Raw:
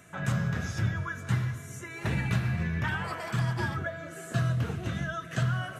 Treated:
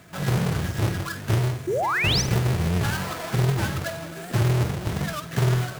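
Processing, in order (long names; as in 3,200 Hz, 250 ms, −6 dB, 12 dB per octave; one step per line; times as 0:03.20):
each half-wave held at its own peak
sound drawn into the spectrogram rise, 0:01.67–0:02.22, 330–6,400 Hz −24 dBFS
flutter between parallel walls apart 8.3 metres, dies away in 0.27 s
wow of a warped record 78 rpm, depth 160 cents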